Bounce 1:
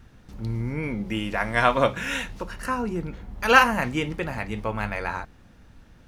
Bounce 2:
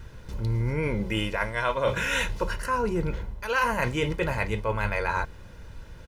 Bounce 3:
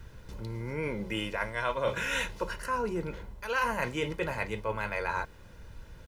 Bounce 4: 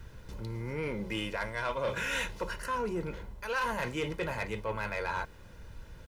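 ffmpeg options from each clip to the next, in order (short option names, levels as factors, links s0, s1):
-af "aecho=1:1:2:0.57,areverse,acompressor=threshold=0.0398:ratio=8,areverse,volume=1.88"
-filter_complex "[0:a]acrossover=split=180[s0][s1];[s0]alimiter=level_in=2.51:limit=0.0631:level=0:latency=1:release=359,volume=0.398[s2];[s2][s1]amix=inputs=2:normalize=0,acrusher=bits=10:mix=0:aa=0.000001,volume=0.596"
-af "asoftclip=type=tanh:threshold=0.0562"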